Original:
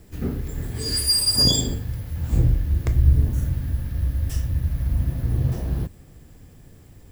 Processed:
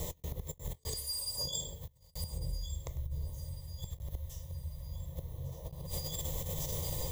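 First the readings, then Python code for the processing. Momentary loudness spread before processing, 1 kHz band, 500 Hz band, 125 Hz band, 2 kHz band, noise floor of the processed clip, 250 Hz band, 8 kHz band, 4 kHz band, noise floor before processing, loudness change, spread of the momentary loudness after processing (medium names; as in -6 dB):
13 LU, -9.0 dB, -10.0 dB, -18.0 dB, -16.5 dB, -64 dBFS, -19.0 dB, -12.5 dB, -18.0 dB, -48 dBFS, -17.5 dB, 9 LU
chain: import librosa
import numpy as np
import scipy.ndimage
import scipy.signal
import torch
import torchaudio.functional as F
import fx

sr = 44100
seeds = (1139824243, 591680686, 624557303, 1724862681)

y = fx.ripple_eq(x, sr, per_octave=1.1, db=10)
y = fx.echo_wet_highpass(y, sr, ms=1150, feedback_pct=47, hz=2900.0, wet_db=-14.5)
y = fx.gate_flip(y, sr, shuts_db=-17.0, range_db=-30)
y = fx.low_shelf(y, sr, hz=130.0, db=-9.0)
y = y + 10.0 ** (-17.5 / 20.0) * np.pad(y, (int(100 * sr / 1000.0), 0))[:len(y)]
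y = fx.over_compress(y, sr, threshold_db=-50.0, ratio=-0.5)
y = fx.fixed_phaser(y, sr, hz=660.0, stages=4)
y = y * 10.0 ** (12.0 / 20.0)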